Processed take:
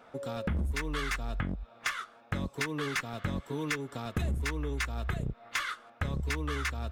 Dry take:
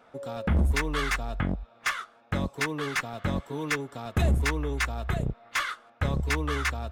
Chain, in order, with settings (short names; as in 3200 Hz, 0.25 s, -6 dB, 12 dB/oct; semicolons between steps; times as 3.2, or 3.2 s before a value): dynamic EQ 740 Hz, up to -5 dB, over -45 dBFS, Q 1.5; compressor 5:1, threshold -31 dBFS, peak gain reduction 10.5 dB; gain +1.5 dB